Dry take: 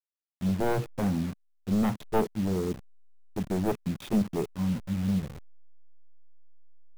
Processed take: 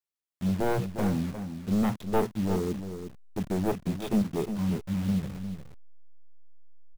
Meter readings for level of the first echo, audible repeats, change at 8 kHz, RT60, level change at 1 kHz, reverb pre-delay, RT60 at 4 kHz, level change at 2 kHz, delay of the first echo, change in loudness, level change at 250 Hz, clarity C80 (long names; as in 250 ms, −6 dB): −9.0 dB, 1, +0.5 dB, no reverb audible, +0.5 dB, no reverb audible, no reverb audible, +0.5 dB, 355 ms, 0.0 dB, +0.5 dB, no reverb audible